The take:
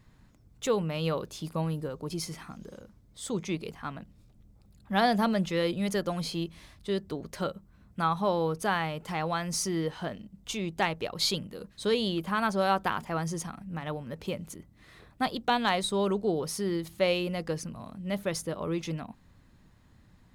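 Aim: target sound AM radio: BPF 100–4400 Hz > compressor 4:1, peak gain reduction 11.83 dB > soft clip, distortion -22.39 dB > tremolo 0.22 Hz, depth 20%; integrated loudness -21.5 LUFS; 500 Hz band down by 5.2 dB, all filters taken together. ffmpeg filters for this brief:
-af "highpass=100,lowpass=4.4k,equalizer=f=500:t=o:g=-6.5,acompressor=threshold=-36dB:ratio=4,asoftclip=threshold=-28.5dB,tremolo=f=0.22:d=0.2,volume=20.5dB"

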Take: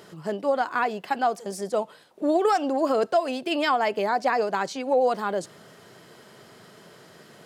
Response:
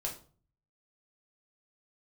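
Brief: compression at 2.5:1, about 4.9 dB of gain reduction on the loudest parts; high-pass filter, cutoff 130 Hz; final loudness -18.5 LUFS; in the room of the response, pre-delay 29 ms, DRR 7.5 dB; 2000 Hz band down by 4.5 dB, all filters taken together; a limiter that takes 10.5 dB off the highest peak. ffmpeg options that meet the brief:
-filter_complex "[0:a]highpass=130,equalizer=f=2k:t=o:g=-6.5,acompressor=threshold=-25dB:ratio=2.5,alimiter=level_in=1.5dB:limit=-24dB:level=0:latency=1,volume=-1.5dB,asplit=2[a][b];[1:a]atrim=start_sample=2205,adelay=29[c];[b][c]afir=irnorm=-1:irlink=0,volume=-9dB[d];[a][d]amix=inputs=2:normalize=0,volume=15dB"

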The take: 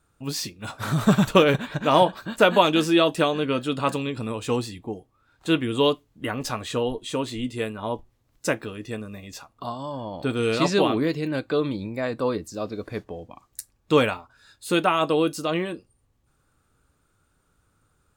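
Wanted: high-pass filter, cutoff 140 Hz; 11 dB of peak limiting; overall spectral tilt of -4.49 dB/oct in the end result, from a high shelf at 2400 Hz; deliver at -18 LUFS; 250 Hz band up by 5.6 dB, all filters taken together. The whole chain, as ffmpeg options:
-af "highpass=140,equalizer=f=250:t=o:g=8,highshelf=f=2.4k:g=7.5,volume=5dB,alimiter=limit=-4.5dB:level=0:latency=1"

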